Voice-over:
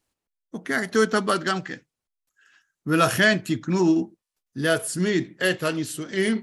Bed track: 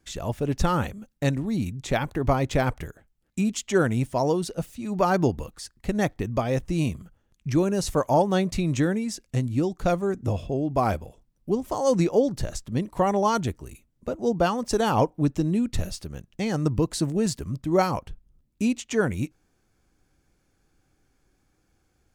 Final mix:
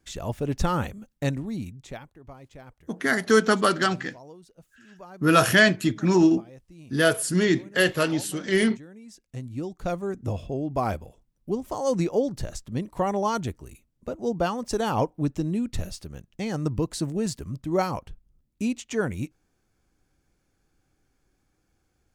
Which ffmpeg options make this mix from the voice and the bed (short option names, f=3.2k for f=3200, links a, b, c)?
-filter_complex "[0:a]adelay=2350,volume=1.5dB[a];[1:a]volume=18.5dB,afade=t=out:st=1.19:d=0.91:silence=0.0841395,afade=t=in:st=8.9:d=1.39:silence=0.1[b];[a][b]amix=inputs=2:normalize=0"